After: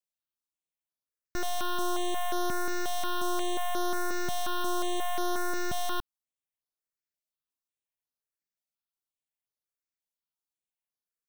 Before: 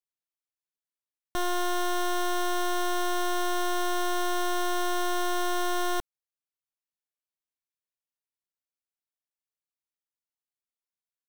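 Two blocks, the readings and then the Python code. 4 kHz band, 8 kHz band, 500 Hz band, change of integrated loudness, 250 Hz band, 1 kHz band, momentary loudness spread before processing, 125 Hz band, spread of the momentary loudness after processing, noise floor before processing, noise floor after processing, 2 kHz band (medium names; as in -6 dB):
-3.0 dB, -2.5 dB, -3.0 dB, -3.0 dB, -3.0 dB, -3.5 dB, 1 LU, no reading, 3 LU, under -85 dBFS, under -85 dBFS, -4.0 dB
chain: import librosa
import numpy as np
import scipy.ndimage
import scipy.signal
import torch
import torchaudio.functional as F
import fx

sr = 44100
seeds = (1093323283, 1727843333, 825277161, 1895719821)

y = fx.phaser_held(x, sr, hz=5.6, low_hz=350.0, high_hz=7900.0)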